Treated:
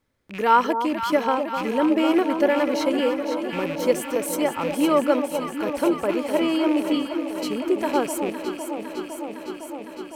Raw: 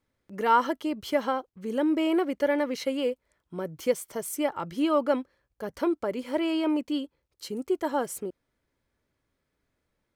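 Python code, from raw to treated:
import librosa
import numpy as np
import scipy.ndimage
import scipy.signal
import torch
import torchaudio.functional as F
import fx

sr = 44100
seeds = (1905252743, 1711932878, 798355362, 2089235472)

y = fx.rattle_buzz(x, sr, strikes_db=-46.0, level_db=-30.0)
y = fx.echo_alternate(y, sr, ms=254, hz=1000.0, feedback_pct=88, wet_db=-7)
y = y * librosa.db_to_amplitude(4.5)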